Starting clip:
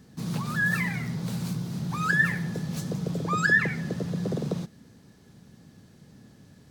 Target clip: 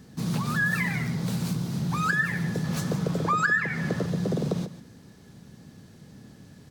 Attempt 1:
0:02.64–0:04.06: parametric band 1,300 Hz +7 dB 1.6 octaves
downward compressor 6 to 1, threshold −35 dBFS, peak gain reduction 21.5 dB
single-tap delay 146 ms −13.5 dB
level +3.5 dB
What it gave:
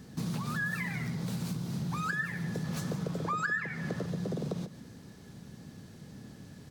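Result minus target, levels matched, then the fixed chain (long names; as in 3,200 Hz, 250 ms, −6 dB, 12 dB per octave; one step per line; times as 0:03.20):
downward compressor: peak gain reduction +8.5 dB
0:02.64–0:04.06: parametric band 1,300 Hz +7 dB 1.6 octaves
downward compressor 6 to 1, threshold −25 dBFS, peak gain reduction 13.5 dB
single-tap delay 146 ms −13.5 dB
level +3.5 dB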